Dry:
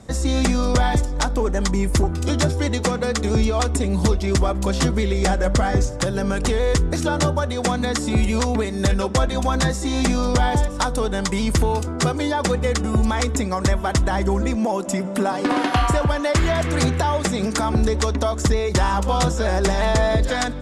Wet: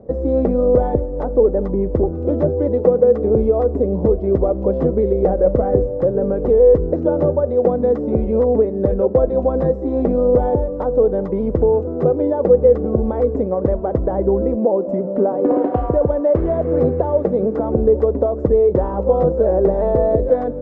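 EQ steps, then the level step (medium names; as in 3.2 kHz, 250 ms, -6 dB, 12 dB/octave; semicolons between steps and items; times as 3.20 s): resonant low-pass 500 Hz, resonance Q 3.8; bass shelf 250 Hz -5.5 dB; +2.0 dB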